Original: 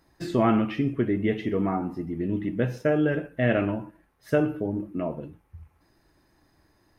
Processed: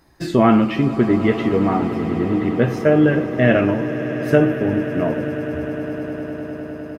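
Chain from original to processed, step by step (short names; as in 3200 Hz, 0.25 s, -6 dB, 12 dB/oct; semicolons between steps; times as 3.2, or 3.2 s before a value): doubler 13 ms -13.5 dB; swelling echo 0.102 s, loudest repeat 8, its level -17.5 dB; gain +7.5 dB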